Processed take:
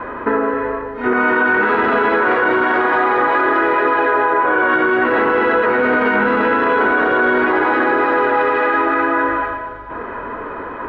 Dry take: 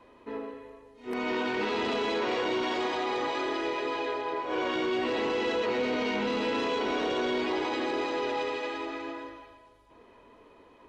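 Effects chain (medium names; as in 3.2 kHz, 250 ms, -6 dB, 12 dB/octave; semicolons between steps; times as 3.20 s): compression 4:1, threshold -41 dBFS, peak gain reduction 13 dB; resonant low-pass 1.5 kHz, resonance Q 5.2; loudness maximiser +31 dB; trim -5.5 dB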